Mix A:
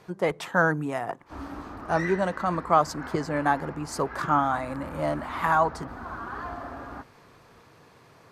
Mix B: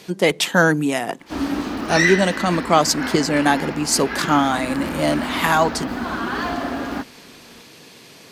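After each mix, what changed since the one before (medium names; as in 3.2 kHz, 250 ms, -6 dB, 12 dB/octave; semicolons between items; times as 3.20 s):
background +5.5 dB; master: remove FFT filter 110 Hz 0 dB, 220 Hz -13 dB, 1.2 kHz -2 dB, 3 kHz -19 dB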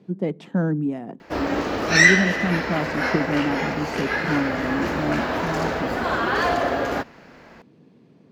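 speech: add band-pass filter 190 Hz, Q 1.3; background: add graphic EQ 125/250/500/2000/8000 Hz +6/-8/+11/+4/+7 dB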